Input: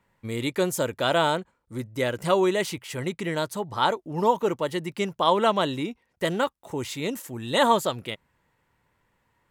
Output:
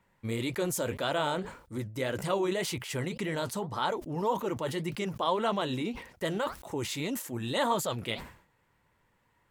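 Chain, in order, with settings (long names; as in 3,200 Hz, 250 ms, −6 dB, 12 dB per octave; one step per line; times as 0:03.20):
in parallel at −1.5 dB: compressor whose output falls as the input rises −31 dBFS, ratio −1
on the sum: flanger 1.8 Hz, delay 0.8 ms, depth 9.9 ms, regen −58%
level that may fall only so fast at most 110 dB per second
level −5 dB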